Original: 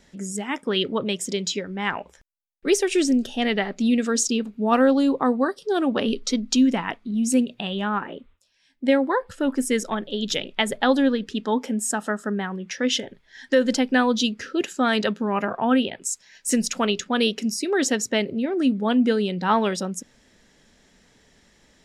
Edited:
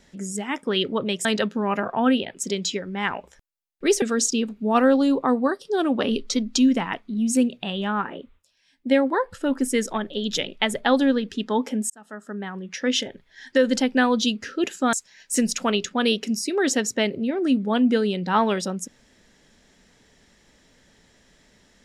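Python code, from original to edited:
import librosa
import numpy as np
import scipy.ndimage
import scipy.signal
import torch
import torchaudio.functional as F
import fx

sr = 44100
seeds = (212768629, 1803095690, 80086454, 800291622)

y = fx.edit(x, sr, fx.cut(start_s=2.84, length_s=1.15),
    fx.fade_in_span(start_s=11.87, length_s=0.96),
    fx.move(start_s=14.9, length_s=1.18, to_s=1.25), tone=tone)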